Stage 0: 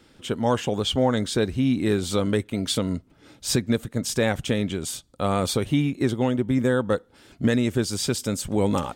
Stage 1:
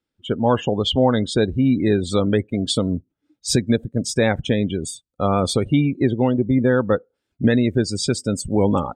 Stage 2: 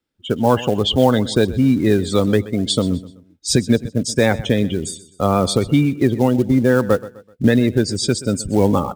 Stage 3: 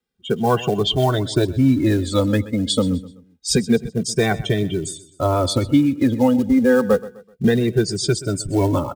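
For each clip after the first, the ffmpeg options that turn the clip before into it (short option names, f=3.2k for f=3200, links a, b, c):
-af "afftdn=nr=32:nf=-32,volume=4.5dB"
-filter_complex "[0:a]acrossover=split=290|1500[a][b][c];[b]acrusher=bits=5:mode=log:mix=0:aa=0.000001[d];[a][d][c]amix=inputs=3:normalize=0,aecho=1:1:127|254|381:0.133|0.0507|0.0193,volume=2.5dB"
-filter_complex "[0:a]asplit=2[a][b];[b]adelay=2.1,afreqshift=-0.28[c];[a][c]amix=inputs=2:normalize=1,volume=1.5dB"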